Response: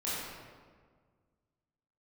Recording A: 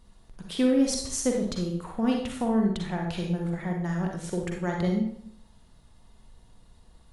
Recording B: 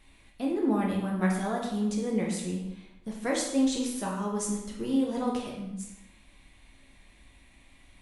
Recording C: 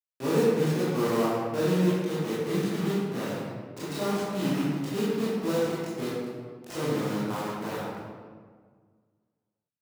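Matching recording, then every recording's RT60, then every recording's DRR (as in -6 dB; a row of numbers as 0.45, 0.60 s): C; 0.60, 0.90, 1.7 s; 1.0, -2.5, -10.0 dB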